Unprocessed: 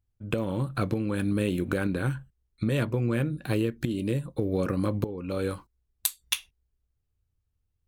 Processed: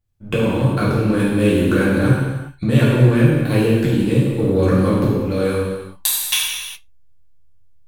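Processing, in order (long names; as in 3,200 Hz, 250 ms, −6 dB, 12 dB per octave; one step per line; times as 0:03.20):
notch filter 1,300 Hz, Q 26
in parallel at −4 dB: slack as between gear wheels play −29.5 dBFS
on the sum: reverb whose tail is shaped and stops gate 440 ms falling, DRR −8 dB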